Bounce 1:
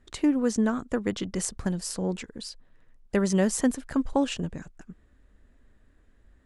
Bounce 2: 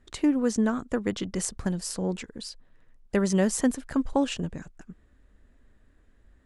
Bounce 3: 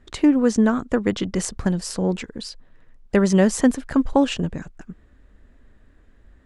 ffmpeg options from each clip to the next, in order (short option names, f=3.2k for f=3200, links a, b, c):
-af anull
-af "highshelf=f=8.4k:g=-11,volume=7dB"